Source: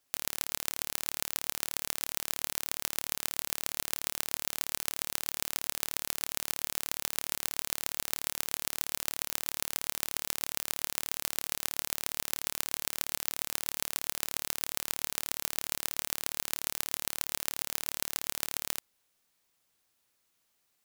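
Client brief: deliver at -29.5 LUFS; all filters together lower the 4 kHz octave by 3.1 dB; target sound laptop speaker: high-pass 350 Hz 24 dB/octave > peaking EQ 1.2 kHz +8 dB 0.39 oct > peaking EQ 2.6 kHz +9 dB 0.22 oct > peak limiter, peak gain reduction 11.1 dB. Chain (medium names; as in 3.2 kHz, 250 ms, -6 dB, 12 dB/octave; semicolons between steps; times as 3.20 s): high-pass 350 Hz 24 dB/octave; peaking EQ 1.2 kHz +8 dB 0.39 oct; peaking EQ 2.6 kHz +9 dB 0.22 oct; peaking EQ 4 kHz -5.5 dB; trim +11 dB; peak limiter -2.5 dBFS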